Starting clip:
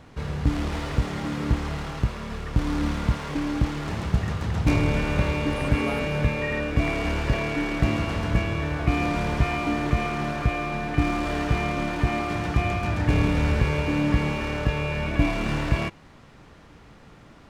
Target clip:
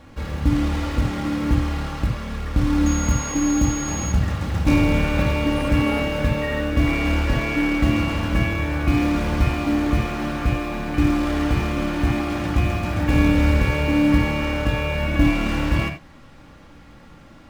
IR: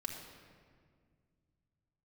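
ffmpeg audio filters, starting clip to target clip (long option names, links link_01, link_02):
-filter_complex "[0:a]asettb=1/sr,asplit=3[link_01][link_02][link_03];[link_01]atrim=end=2.864[link_04];[link_02]atrim=start=2.86:end=4.12,asetpts=PTS-STARTPTS,afade=type=in:duration=0.004:curve=qsin,afade=type=out:start_time=1.256:duration=0.004:curve=qsin,aeval=exprs='val(0)+0.0251*sin(2*PI*6600*n/s)':channel_layout=same[link_05];[link_03]atrim=start=4.116[link_06];[link_04][link_05]acrossfade=duration=0.004:curve1=hsin:curve2=qsin[link_07];[link_07][link_06]acrossfade=duration=0.004:curve1=qsin:curve2=hsin,asplit=2[link_08][link_09];[link_09]acrusher=bits=4:mode=log:mix=0:aa=0.000001,volume=-5.5dB[link_10];[link_08][link_10]amix=inputs=2:normalize=0[link_11];[1:a]atrim=start_sample=2205,atrim=end_sample=4410[link_12];[link_11][link_12]afir=irnorm=-1:irlink=0"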